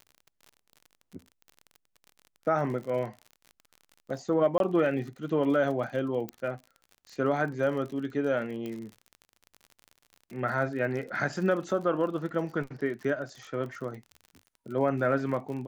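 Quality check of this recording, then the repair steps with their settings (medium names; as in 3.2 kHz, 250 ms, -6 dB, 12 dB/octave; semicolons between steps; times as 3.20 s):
crackle 45 per s -38 dBFS
4.58–4.60 s: dropout 22 ms
6.29 s: pop -20 dBFS
8.66 s: pop -25 dBFS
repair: de-click; interpolate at 4.58 s, 22 ms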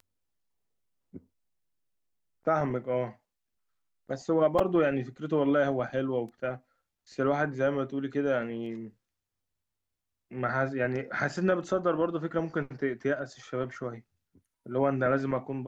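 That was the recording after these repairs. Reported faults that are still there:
6.29 s: pop
8.66 s: pop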